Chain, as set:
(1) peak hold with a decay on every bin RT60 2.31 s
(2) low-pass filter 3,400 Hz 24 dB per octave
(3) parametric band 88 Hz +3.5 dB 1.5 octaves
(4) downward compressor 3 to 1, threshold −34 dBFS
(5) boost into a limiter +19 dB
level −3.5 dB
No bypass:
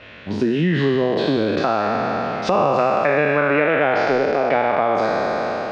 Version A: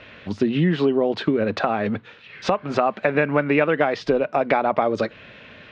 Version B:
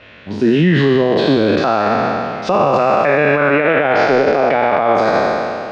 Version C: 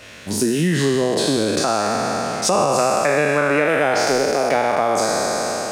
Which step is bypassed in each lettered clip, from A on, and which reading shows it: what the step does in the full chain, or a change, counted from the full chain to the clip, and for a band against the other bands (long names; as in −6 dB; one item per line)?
1, change in crest factor +3.0 dB
4, average gain reduction 9.0 dB
2, 4 kHz band +7.0 dB